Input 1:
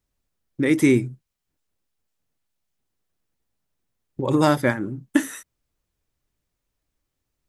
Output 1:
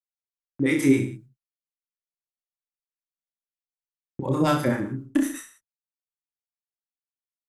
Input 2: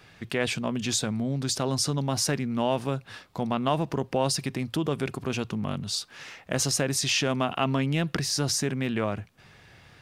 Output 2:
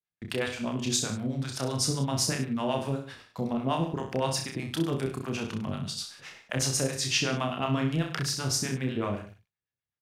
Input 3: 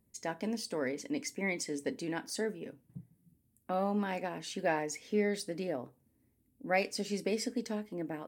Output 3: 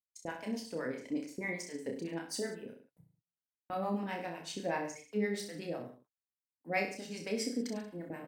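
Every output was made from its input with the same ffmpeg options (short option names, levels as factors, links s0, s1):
-filter_complex "[0:a]agate=range=0.00794:threshold=0.00631:ratio=16:detection=peak,asoftclip=type=hard:threshold=0.422,acrossover=split=620[s0][s1];[s0]aeval=exprs='val(0)*(1-1/2+1/2*cos(2*PI*7.9*n/s))':c=same[s2];[s1]aeval=exprs='val(0)*(1-1/2-1/2*cos(2*PI*7.9*n/s))':c=same[s3];[s2][s3]amix=inputs=2:normalize=0,asplit=2[s4][s5];[s5]aecho=0:1:30|63|99.3|139.2|183.2:0.631|0.398|0.251|0.158|0.1[s6];[s4][s6]amix=inputs=2:normalize=0"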